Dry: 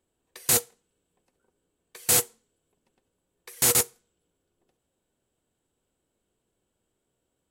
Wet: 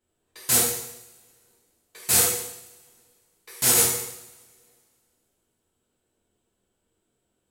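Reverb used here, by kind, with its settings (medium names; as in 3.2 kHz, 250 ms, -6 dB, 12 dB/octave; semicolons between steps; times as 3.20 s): two-slope reverb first 0.79 s, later 2.3 s, from -24 dB, DRR -8 dB; trim -5.5 dB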